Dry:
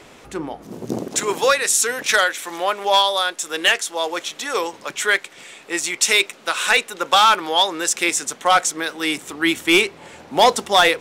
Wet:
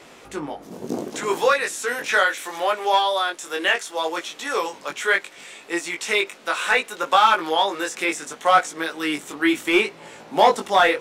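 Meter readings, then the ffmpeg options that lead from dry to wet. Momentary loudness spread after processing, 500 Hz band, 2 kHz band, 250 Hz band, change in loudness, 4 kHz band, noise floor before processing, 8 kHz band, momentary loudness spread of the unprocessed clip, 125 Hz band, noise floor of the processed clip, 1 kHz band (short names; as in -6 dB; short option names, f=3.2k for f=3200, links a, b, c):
12 LU, -1.0 dB, -2.0 dB, -1.0 dB, -3.0 dB, -7.0 dB, -46 dBFS, -11.5 dB, 12 LU, n/a, -46 dBFS, -1.0 dB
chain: -filter_complex "[0:a]acrossover=split=2500[a][b];[b]acompressor=threshold=-30dB:ratio=4:attack=1:release=60[c];[a][c]amix=inputs=2:normalize=0,lowshelf=f=110:g=-10,flanger=delay=17.5:depth=3.9:speed=0.69,volume=2.5dB"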